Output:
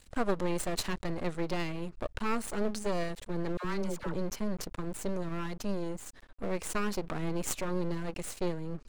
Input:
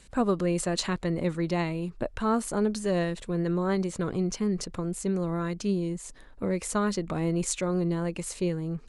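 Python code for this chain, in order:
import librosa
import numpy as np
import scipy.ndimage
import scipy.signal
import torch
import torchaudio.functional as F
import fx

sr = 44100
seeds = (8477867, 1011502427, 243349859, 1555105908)

y = np.maximum(x, 0.0)
y = fx.dispersion(y, sr, late='lows', ms=74.0, hz=750.0, at=(3.57, 4.14))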